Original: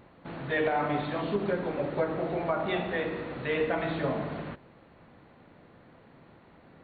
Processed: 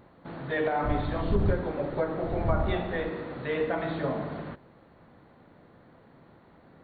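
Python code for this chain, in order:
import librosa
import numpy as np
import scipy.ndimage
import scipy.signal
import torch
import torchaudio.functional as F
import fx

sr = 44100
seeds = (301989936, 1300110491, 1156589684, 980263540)

y = fx.dmg_wind(x, sr, seeds[0], corner_hz=100.0, level_db=-28.0, at=(0.83, 3.08), fade=0.02)
y = fx.peak_eq(y, sr, hz=2600.0, db=-6.0, octaves=0.67)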